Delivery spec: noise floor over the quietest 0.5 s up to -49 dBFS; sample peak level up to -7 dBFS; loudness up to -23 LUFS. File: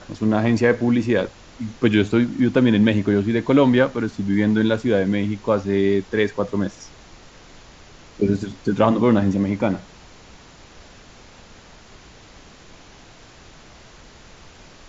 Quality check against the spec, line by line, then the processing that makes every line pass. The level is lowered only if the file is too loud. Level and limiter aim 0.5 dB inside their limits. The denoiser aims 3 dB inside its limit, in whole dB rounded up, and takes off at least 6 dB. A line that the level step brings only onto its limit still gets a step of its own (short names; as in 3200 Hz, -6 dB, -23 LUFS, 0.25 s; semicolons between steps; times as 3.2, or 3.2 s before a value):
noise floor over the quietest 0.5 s -46 dBFS: fail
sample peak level -2.5 dBFS: fail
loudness -20.0 LUFS: fail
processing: gain -3.5 dB; limiter -7.5 dBFS